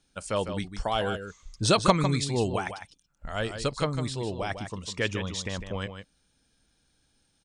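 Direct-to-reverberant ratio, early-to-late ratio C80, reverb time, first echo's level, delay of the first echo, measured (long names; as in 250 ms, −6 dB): no reverb audible, no reverb audible, no reverb audible, −9.0 dB, 153 ms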